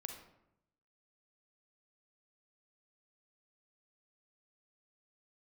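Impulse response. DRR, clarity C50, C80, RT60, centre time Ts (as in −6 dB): 4.0 dB, 5.5 dB, 8.5 dB, 0.80 s, 26 ms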